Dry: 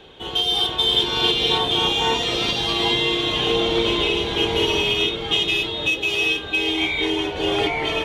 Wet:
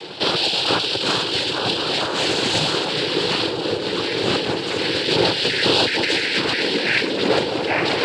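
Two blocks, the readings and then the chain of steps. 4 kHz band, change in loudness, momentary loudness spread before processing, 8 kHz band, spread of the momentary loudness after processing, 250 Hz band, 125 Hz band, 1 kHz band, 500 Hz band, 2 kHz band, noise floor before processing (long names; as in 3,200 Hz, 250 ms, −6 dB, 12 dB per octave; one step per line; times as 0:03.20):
−1.0 dB, 0.0 dB, 4 LU, +3.5 dB, 4 LU, +1.5 dB, +1.5 dB, +1.0 dB, +2.0 dB, +1.0 dB, −31 dBFS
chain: dynamic equaliser 3,100 Hz, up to −3 dB, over −28 dBFS, Q 1.5
compressor whose output falls as the input rises −28 dBFS, ratio −1
cochlear-implant simulation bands 8
level +7.5 dB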